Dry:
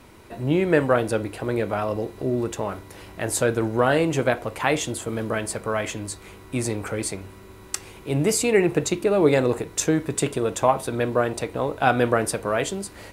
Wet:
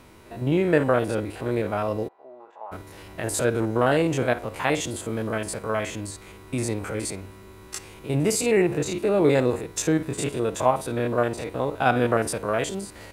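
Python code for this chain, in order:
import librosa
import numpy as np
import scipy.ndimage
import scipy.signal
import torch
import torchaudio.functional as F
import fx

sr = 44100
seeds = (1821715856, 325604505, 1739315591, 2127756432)

y = fx.spec_steps(x, sr, hold_ms=50)
y = fx.ladder_bandpass(y, sr, hz=900.0, resonance_pct=60, at=(2.07, 2.71), fade=0.02)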